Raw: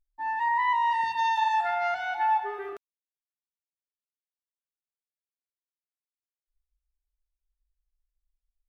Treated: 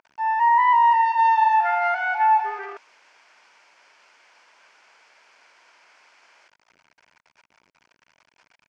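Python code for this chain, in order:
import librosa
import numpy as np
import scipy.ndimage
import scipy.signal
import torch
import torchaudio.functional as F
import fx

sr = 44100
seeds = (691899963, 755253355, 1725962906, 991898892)

y = x + 0.5 * 10.0 ** (-40.5 / 20.0) * np.sign(x)
y = fx.cabinet(y, sr, low_hz=470.0, low_slope=12, high_hz=5200.0, hz=(640.0, 940.0, 1500.0, 2300.0, 3800.0), db=(4, 8, 7, 7, -10))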